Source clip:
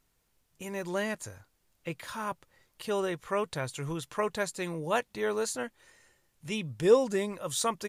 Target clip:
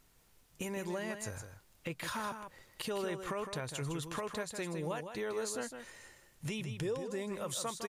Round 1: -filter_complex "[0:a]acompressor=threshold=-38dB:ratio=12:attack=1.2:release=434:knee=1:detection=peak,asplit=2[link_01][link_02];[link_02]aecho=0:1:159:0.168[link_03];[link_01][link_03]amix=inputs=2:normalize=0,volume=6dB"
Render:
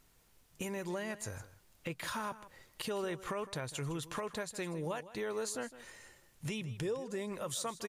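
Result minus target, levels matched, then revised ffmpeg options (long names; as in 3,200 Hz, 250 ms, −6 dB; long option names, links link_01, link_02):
echo-to-direct −7.5 dB
-filter_complex "[0:a]acompressor=threshold=-38dB:ratio=12:attack=1.2:release=434:knee=1:detection=peak,asplit=2[link_01][link_02];[link_02]aecho=0:1:159:0.398[link_03];[link_01][link_03]amix=inputs=2:normalize=0,volume=6dB"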